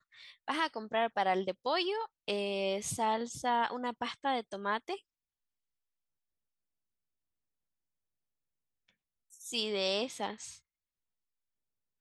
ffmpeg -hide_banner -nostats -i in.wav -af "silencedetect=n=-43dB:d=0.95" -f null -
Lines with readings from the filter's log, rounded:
silence_start: 4.96
silence_end: 9.41 | silence_duration: 4.45
silence_start: 10.54
silence_end: 12.01 | silence_duration: 1.47